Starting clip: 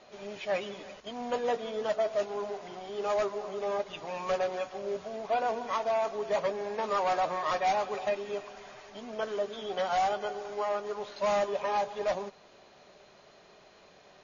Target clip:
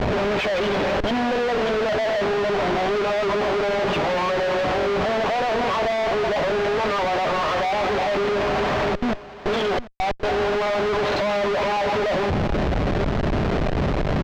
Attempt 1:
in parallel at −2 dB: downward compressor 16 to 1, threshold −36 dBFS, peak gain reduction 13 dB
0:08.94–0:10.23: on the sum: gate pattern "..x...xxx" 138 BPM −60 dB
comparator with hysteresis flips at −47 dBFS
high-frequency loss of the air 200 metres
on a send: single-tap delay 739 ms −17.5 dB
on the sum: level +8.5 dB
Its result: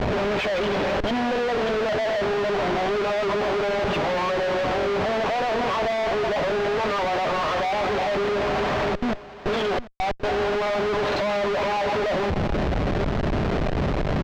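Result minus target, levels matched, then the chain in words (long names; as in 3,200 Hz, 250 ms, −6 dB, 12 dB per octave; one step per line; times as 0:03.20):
downward compressor: peak gain reduction +7 dB
in parallel at −2 dB: downward compressor 16 to 1, threshold −28.5 dBFS, peak gain reduction 6 dB
0:08.94–0:10.23: on the sum: gate pattern "..x...xxx" 138 BPM −60 dB
comparator with hysteresis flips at −47 dBFS
high-frequency loss of the air 200 metres
on a send: single-tap delay 739 ms −17.5 dB
on the sum: level +8.5 dB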